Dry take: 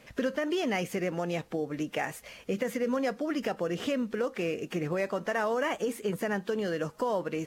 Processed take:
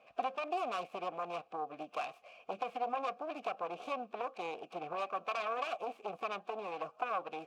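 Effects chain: self-modulated delay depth 0.68 ms; vowel filter a; trim +5 dB

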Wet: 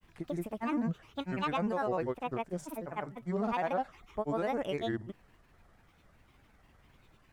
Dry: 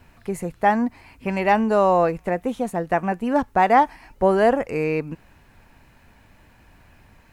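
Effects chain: peak limiter -13.5 dBFS, peak gain reduction 7.5 dB; granulator, pitch spread up and down by 7 st; trim -9 dB

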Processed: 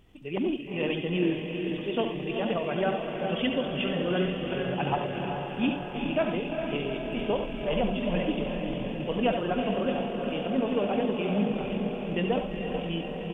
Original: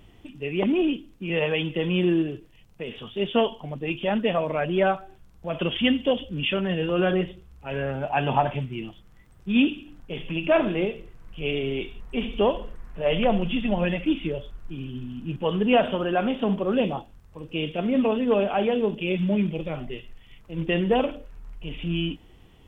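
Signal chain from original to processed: echo that smears into a reverb 701 ms, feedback 71%, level -4.5 dB; on a send at -6.5 dB: reverberation RT60 0.35 s, pre-delay 111 ms; on the sum: tempo 1.7×; trim -6 dB

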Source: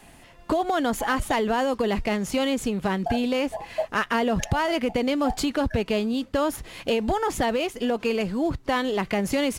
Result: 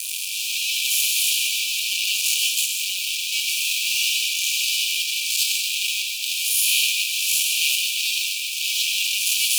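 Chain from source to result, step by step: spectral blur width 186 ms; treble shelf 10 kHz +7 dB; fuzz box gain 55 dB, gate -48 dBFS; brick-wall FIR high-pass 2.3 kHz; reverberation, pre-delay 124 ms, DRR 5 dB

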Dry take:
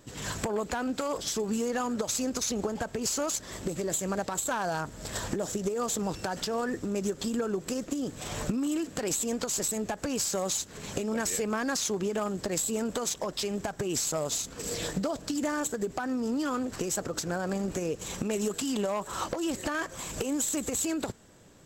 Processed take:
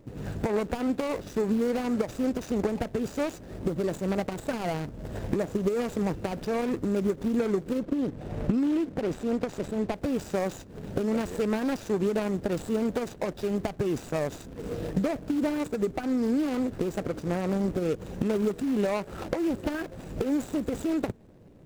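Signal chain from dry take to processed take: median filter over 41 samples; 7.78–9.92 s: treble shelf 5.1 kHz -> 9.3 kHz -9.5 dB; trim +5 dB

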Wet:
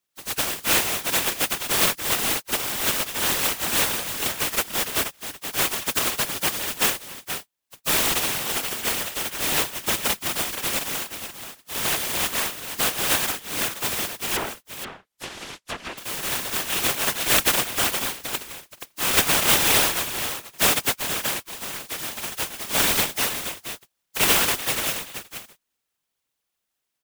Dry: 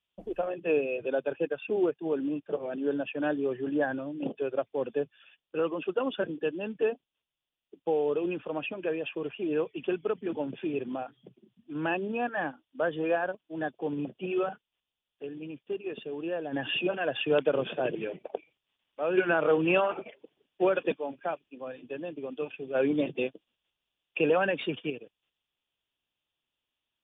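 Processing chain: spectral contrast reduction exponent 0.1; 14.36–15.98 s: low-pass that closes with the level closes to 1.7 kHz, closed at -29 dBFS; delay 477 ms -9 dB; whisper effect; trim +6 dB

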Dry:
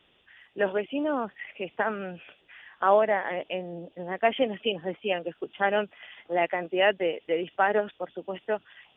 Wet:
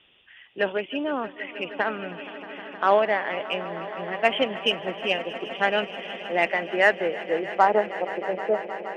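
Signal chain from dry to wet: low-pass sweep 3 kHz -> 430 Hz, 6.14–8.90 s; Chebyshev shaper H 7 -33 dB, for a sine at -6 dBFS; echo with a slow build-up 157 ms, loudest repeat 5, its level -18 dB; trim +1 dB

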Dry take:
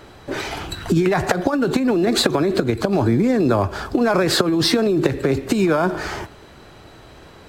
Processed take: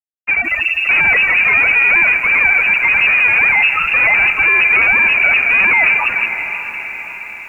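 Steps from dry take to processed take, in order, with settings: 1.66–3.68 s: bass shelf 290 Hz -6.5 dB; loudest bins only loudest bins 2; fuzz box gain 37 dB, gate -44 dBFS; echo that smears into a reverb 592 ms, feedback 52%, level -10 dB; frequency inversion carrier 2.7 kHz; bit-crushed delay 166 ms, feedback 35%, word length 7-bit, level -12 dB; trim +2 dB

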